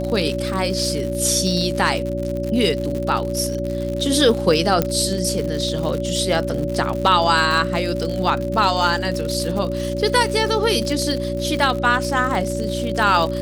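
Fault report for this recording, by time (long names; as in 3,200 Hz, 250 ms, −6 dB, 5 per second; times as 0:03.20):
surface crackle 99 per second −24 dBFS
mains hum 60 Hz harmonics 6 −26 dBFS
whistle 570 Hz −25 dBFS
0:04.82: click −4 dBFS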